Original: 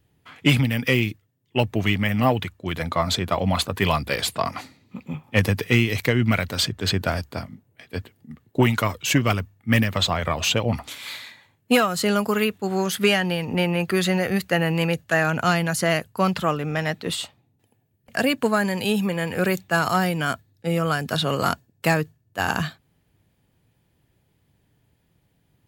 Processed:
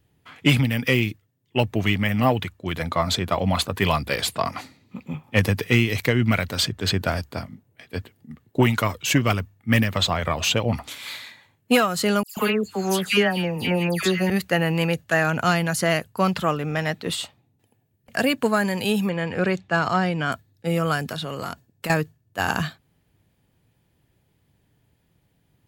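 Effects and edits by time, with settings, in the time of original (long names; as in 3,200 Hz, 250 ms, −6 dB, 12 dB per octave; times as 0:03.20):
0:12.23–0:14.30: all-pass dispersion lows, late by 139 ms, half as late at 2,200 Hz
0:19.09–0:20.32: high-frequency loss of the air 110 metres
0:21.05–0:21.90: downward compressor, threshold −26 dBFS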